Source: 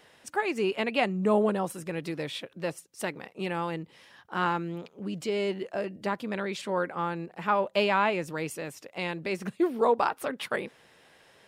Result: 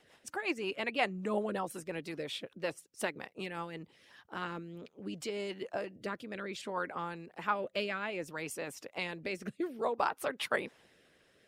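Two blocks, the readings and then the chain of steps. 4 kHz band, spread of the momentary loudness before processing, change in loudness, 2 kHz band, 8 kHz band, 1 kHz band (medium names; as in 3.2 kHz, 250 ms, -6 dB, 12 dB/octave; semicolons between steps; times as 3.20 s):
-4.5 dB, 11 LU, -7.5 dB, -4.5 dB, -3.0 dB, -8.0 dB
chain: rotary cabinet horn 5.5 Hz, later 0.6 Hz, at 3.47 s; harmonic-percussive split harmonic -9 dB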